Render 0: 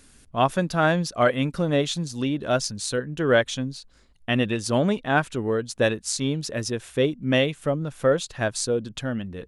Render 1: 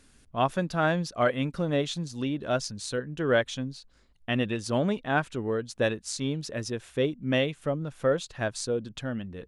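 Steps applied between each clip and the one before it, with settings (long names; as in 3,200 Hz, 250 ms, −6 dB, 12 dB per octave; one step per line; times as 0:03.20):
high-shelf EQ 9,200 Hz −8.5 dB
level −4.5 dB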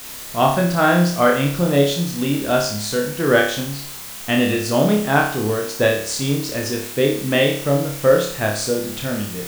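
in parallel at −3 dB: bit-depth reduction 6 bits, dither triangular
on the sum: flutter between parallel walls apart 4.9 metres, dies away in 0.54 s
level +2.5 dB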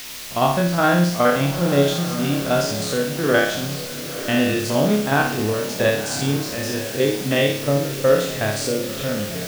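spectrum averaged block by block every 50 ms
noise in a band 1,800–6,300 Hz −38 dBFS
feedback delay with all-pass diffusion 962 ms, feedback 45%, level −11.5 dB
level −1 dB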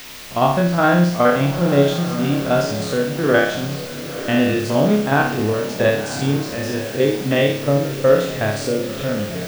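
parametric band 12,000 Hz −8 dB 2.6 octaves
level +2.5 dB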